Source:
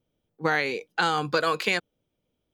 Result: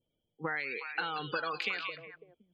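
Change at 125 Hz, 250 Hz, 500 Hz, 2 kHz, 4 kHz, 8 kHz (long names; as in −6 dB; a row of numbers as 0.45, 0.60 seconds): −11.5 dB, −12.0 dB, −13.0 dB, −8.0 dB, −9.0 dB, below −20 dB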